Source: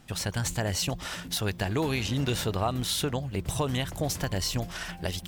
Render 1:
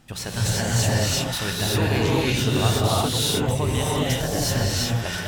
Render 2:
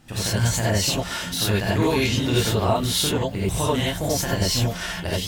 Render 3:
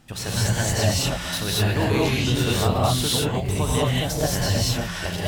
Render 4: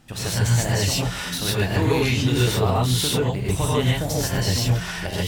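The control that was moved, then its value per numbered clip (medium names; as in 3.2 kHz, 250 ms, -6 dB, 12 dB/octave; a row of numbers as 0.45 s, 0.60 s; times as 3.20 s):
gated-style reverb, gate: 400 ms, 110 ms, 250 ms, 170 ms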